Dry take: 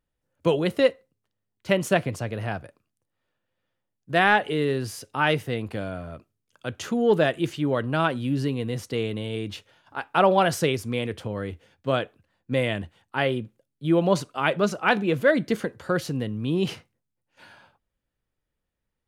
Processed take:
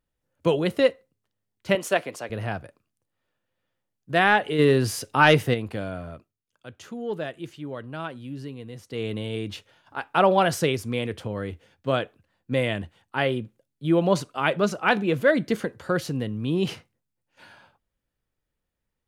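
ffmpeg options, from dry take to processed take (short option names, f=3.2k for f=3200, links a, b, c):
-filter_complex "[0:a]asettb=1/sr,asplit=3[a][b][c];[a]atrim=end=1.754[d];[b]atrim=start=1.75:end=2.3,asetpts=PTS-STARTPTS,afade=t=in:d=0.004:c=qsin,afade=t=out:st=0.546:d=0.004:c=qsin,highpass=380[e];[c]atrim=start=2.296[f];[d][e]acrossfade=d=0.004:c1=hsin:c2=qsin[g];[g][f]acrossfade=d=0.004:c1=qsin:c2=hsin,asplit=3[h][i][j];[h]afade=t=out:st=4.58:d=0.02[k];[i]acontrast=69,afade=t=in:st=4.58:d=0.02,afade=t=out:st=5.53:d=0.02[l];[j]afade=t=in:st=5.53:d=0.02[m];[k][l][m]amix=inputs=3:normalize=0,asplit=3[n][o][p];[n]atrim=end=6.34,asetpts=PTS-STARTPTS,afade=t=out:st=6.09:d=0.25:silence=0.298538[q];[o]atrim=start=6.34:end=8.86,asetpts=PTS-STARTPTS,volume=-10.5dB[r];[p]atrim=start=8.86,asetpts=PTS-STARTPTS,afade=t=in:d=0.25:silence=0.298538[s];[q][r][s]concat=n=3:v=0:a=1"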